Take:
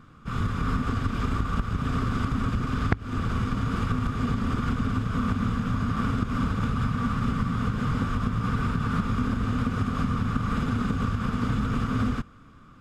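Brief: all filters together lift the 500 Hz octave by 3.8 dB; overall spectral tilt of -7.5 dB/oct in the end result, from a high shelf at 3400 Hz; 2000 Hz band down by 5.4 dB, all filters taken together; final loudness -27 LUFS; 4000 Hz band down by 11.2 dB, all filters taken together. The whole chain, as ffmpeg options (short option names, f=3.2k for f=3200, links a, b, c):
-af "equalizer=f=500:t=o:g=5,equalizer=f=2k:t=o:g=-5,highshelf=f=3.4k:g=-8.5,equalizer=f=4k:t=o:g=-7.5,volume=0.5dB"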